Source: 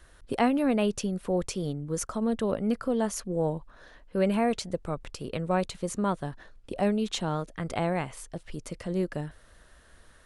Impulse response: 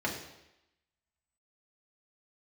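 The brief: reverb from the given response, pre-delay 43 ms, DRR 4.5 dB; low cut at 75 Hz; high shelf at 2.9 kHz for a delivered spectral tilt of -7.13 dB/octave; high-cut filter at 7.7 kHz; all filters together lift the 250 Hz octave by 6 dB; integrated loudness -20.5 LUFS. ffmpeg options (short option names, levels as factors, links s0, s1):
-filter_complex "[0:a]highpass=75,lowpass=7700,equalizer=f=250:t=o:g=7.5,highshelf=f=2900:g=-6,asplit=2[s0][s1];[1:a]atrim=start_sample=2205,adelay=43[s2];[s1][s2]afir=irnorm=-1:irlink=0,volume=0.251[s3];[s0][s3]amix=inputs=2:normalize=0,volume=1.41"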